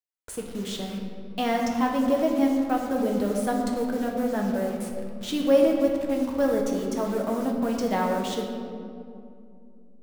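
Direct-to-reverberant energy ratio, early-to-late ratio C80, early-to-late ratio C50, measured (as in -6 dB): 0.0 dB, 4.5 dB, 3.5 dB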